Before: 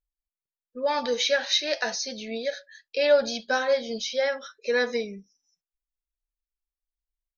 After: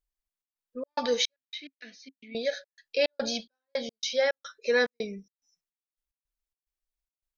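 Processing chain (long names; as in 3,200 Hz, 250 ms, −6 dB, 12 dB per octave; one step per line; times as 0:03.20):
gate pattern "xxx.xx.xx..x.xx." 108 BPM −60 dB
0:01.36–0:02.35: formant filter i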